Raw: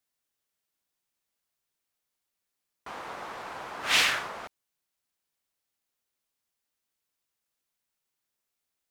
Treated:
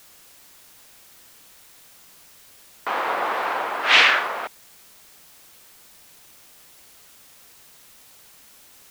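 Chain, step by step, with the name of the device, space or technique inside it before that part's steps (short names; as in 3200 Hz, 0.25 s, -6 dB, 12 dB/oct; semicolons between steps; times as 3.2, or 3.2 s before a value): dictaphone (BPF 360–3200 Hz; AGC gain up to 16 dB; wow and flutter; white noise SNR 22 dB)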